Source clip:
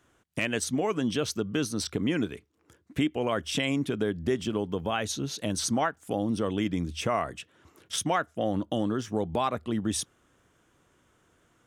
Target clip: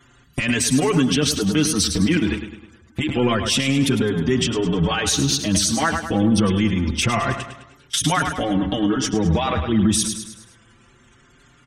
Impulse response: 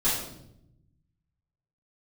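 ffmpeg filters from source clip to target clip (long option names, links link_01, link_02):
-filter_complex "[0:a]aeval=exprs='val(0)+0.5*0.015*sgn(val(0))':channel_layout=same,afftfilt=real='re*gte(hypot(re,im),0.00631)':imag='im*gte(hypot(re,im),0.00631)':win_size=1024:overlap=0.75,agate=range=-32dB:threshold=-32dB:ratio=16:detection=peak,equalizer=frequency=610:width=0.9:gain=-10.5,acompressor=threshold=-38dB:ratio=6,asplit=2[link_01][link_02];[link_02]aecho=0:1:104|208|312|416|520:0.299|0.137|0.0632|0.0291|0.0134[link_03];[link_01][link_03]amix=inputs=2:normalize=0,alimiter=level_in=34dB:limit=-1dB:release=50:level=0:latency=1,asplit=2[link_04][link_05];[link_05]adelay=5.3,afreqshift=0.27[link_06];[link_04][link_06]amix=inputs=2:normalize=1,volume=-6.5dB"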